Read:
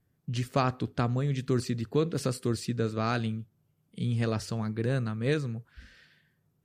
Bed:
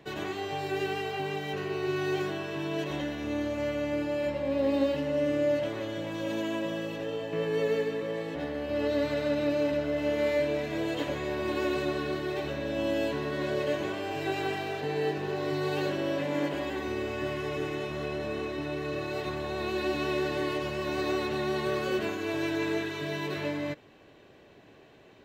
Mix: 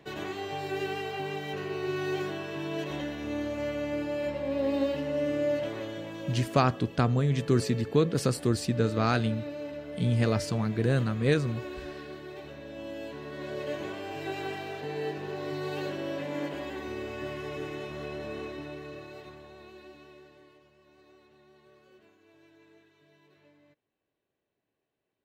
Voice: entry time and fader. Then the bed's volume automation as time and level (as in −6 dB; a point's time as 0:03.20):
6.00 s, +3.0 dB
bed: 0:05.79 −1.5 dB
0:06.73 −10.5 dB
0:12.99 −10.5 dB
0:13.82 −4 dB
0:18.46 −4 dB
0:20.71 −29.5 dB